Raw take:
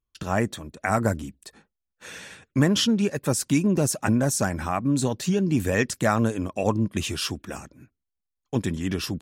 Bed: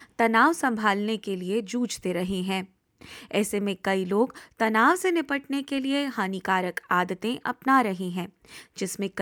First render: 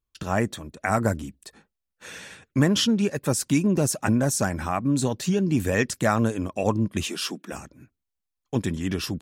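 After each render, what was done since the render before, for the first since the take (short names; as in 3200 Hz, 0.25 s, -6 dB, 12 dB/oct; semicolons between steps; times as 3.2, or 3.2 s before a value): 7.07–7.52 elliptic high-pass 170 Hz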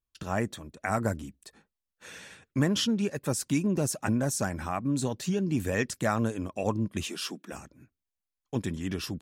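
gain -5.5 dB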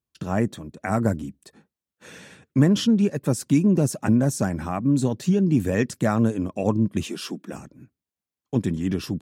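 HPF 120 Hz 12 dB/oct; low shelf 470 Hz +11.5 dB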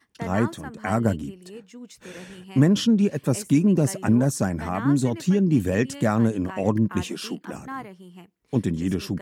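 add bed -14.5 dB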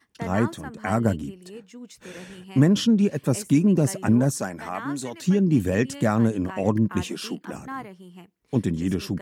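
4.39–5.21 HPF 480 Hz -> 1000 Hz 6 dB/oct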